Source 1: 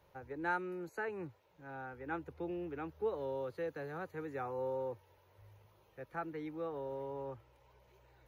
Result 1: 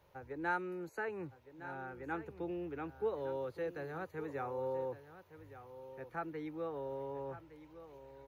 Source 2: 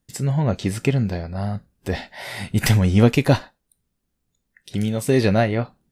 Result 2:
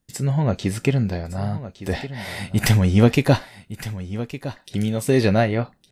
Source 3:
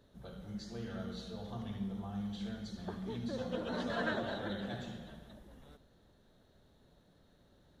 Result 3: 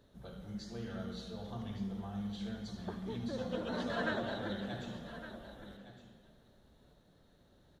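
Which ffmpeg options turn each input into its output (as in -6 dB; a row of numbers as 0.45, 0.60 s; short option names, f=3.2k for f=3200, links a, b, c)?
-af "aecho=1:1:1162:0.211"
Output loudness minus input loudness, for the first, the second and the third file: 0.0, -0.5, -0.5 LU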